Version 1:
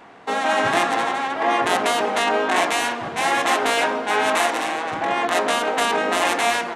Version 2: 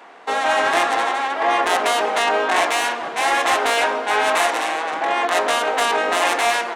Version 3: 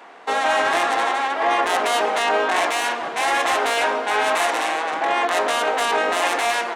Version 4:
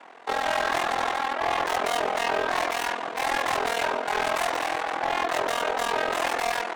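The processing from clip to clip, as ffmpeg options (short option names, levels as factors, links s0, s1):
-af "highpass=390,acontrast=68,volume=0.631"
-af "alimiter=limit=0.282:level=0:latency=1:release=15"
-af "asoftclip=type=hard:threshold=0.133,aeval=exprs='val(0)*sin(2*PI*21*n/s)':c=same,volume=0.841"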